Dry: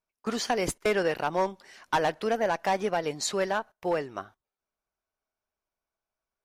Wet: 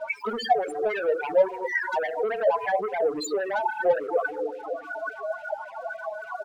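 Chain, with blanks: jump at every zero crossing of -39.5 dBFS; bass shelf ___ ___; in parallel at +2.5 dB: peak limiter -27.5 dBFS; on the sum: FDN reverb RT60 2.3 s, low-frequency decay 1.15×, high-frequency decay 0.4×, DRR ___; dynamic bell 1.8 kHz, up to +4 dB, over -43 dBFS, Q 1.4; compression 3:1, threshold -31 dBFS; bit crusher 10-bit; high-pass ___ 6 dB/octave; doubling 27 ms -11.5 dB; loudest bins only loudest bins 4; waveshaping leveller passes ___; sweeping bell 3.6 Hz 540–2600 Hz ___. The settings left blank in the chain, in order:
260 Hz, -10.5 dB, 5 dB, 65 Hz, 2, +15 dB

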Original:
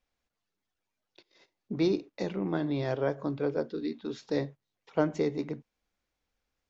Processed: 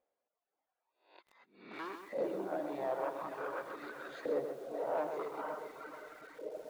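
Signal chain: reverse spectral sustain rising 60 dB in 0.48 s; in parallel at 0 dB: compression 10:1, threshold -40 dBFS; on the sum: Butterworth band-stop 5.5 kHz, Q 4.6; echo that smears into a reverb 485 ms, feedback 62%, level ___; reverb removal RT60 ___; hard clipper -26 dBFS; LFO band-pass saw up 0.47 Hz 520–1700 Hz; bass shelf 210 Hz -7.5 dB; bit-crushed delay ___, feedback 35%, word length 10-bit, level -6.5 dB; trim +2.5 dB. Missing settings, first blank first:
-5 dB, 1.7 s, 129 ms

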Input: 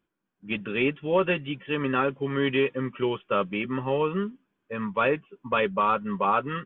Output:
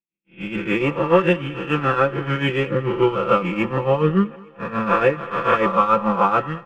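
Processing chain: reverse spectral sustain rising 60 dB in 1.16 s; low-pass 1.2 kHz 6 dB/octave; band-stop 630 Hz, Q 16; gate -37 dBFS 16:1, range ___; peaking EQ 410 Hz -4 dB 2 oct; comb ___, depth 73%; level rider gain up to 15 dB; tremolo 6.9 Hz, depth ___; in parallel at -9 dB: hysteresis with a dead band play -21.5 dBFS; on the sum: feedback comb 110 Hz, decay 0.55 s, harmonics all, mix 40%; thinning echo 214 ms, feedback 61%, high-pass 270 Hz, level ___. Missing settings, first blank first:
-42 dB, 5.9 ms, 70%, -21.5 dB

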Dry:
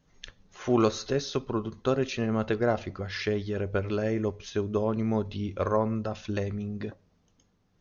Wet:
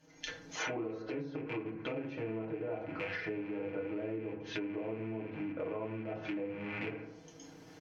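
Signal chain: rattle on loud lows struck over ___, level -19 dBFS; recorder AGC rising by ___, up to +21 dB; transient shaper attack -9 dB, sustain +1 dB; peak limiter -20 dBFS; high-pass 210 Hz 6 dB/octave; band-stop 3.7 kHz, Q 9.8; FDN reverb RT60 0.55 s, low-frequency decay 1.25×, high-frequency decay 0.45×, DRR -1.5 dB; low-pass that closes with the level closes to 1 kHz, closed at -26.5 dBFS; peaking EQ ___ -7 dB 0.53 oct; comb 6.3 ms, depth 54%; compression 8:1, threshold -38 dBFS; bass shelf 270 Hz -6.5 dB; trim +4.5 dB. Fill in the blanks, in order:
-39 dBFS, 16 dB/s, 1.2 kHz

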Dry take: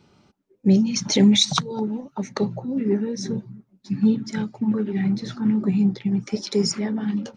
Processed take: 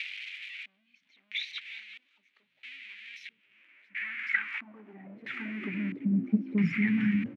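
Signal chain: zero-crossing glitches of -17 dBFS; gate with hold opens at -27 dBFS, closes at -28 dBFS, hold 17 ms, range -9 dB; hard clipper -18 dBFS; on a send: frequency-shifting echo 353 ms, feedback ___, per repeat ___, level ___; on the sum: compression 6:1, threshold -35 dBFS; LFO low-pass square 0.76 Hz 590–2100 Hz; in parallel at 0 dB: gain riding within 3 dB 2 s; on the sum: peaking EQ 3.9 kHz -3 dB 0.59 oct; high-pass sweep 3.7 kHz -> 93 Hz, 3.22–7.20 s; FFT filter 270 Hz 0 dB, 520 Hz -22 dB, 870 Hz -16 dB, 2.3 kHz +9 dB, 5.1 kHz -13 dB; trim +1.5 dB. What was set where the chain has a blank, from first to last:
63%, +67 Hz, -21 dB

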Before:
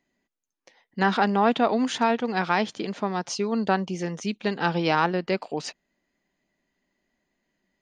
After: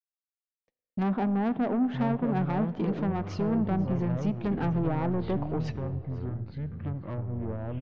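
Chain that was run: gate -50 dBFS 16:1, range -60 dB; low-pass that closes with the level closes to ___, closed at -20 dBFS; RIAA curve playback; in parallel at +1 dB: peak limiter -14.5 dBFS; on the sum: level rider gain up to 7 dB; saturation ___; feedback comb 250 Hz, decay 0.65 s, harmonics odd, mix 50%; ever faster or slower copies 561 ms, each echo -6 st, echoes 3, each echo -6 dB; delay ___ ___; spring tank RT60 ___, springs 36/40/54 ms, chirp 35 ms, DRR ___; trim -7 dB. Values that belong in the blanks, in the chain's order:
830 Hz, -10.5 dBFS, 493 ms, -21.5 dB, 2.1 s, 17 dB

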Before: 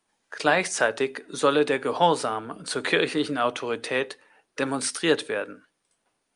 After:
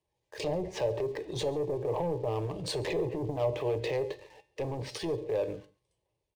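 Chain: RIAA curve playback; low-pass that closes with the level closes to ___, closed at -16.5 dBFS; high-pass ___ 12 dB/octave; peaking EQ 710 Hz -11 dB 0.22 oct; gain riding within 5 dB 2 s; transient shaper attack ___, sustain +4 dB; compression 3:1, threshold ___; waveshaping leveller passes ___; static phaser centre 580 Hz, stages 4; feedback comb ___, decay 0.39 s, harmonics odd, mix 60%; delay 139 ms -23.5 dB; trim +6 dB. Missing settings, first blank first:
470 Hz, 50 Hz, -10 dB, -30 dBFS, 2, 120 Hz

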